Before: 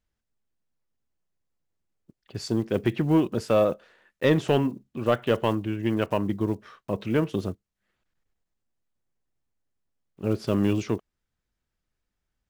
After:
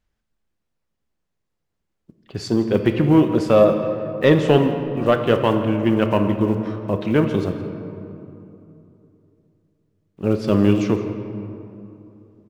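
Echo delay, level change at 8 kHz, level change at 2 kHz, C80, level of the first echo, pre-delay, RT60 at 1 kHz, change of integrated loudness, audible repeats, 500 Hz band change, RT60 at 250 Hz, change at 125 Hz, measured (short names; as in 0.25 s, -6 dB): 0.169 s, n/a, +6.5 dB, 8.0 dB, -17.0 dB, 5 ms, 2.8 s, +7.0 dB, 1, +7.5 dB, 3.4 s, +7.0 dB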